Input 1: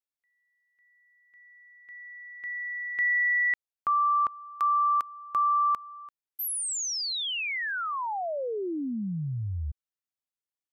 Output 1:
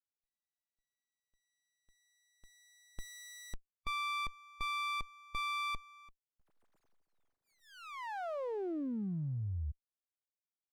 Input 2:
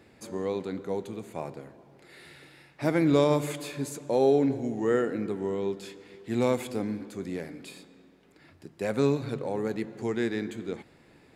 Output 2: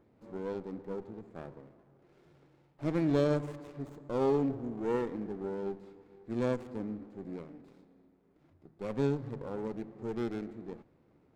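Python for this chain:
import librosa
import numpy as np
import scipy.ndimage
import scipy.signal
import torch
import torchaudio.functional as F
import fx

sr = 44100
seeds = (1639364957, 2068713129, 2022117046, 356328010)

y = fx.wiener(x, sr, points=15)
y = scipy.signal.sosfilt(scipy.signal.butter(4, 9400.0, 'lowpass', fs=sr, output='sos'), y)
y = fx.hpss(y, sr, part='percussive', gain_db=-5)
y = fx.running_max(y, sr, window=17)
y = F.gain(torch.from_numpy(y), -5.5).numpy()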